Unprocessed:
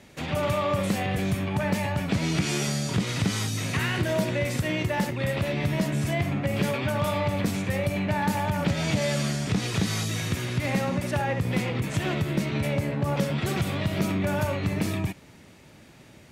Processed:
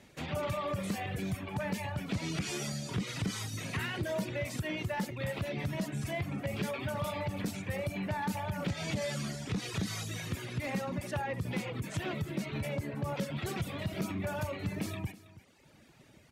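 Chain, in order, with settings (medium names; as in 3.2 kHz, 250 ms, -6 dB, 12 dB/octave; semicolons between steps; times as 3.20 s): reverb removal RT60 1.1 s; saturation -18.5 dBFS, distortion -19 dB; on a send: delay 324 ms -17.5 dB; on the sum: trim -6 dB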